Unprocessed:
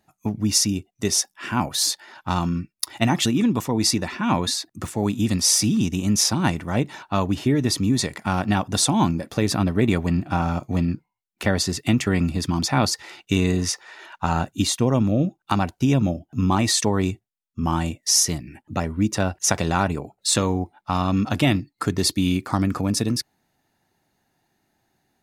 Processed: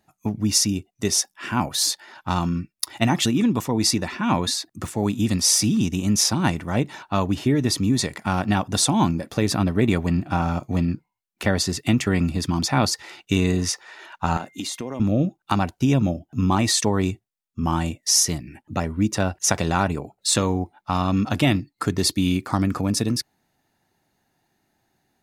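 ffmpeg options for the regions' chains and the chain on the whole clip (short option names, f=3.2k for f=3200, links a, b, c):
-filter_complex "[0:a]asettb=1/sr,asplit=3[a][b][c];[a]atrim=end=14.374[d];[b]atrim=start=14.37:end=15,asetpts=PTS-STARTPTS,afade=t=in:d=0.004:c=qsin,afade=t=out:st=0.626:d=0.004:c=qsin,highpass=220,acompressor=threshold=-25dB:ratio=10:attack=3.2:release=140:knee=1:detection=peak,aeval=exprs='val(0)+0.002*sin(2*PI*2100*n/s)':c=same[e];[c]atrim=start=14.996[f];[d][e]acrossfade=d=0.004:c1=hsin:c2=qsin[g];[g][f]acrossfade=d=0.004:c1=qsin:c2=hsin"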